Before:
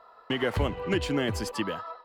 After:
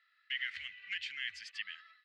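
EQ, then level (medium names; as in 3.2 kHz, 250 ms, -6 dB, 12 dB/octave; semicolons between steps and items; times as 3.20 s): elliptic high-pass 1.9 kHz, stop band 50 dB; tape spacing loss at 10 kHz 33 dB; +6.5 dB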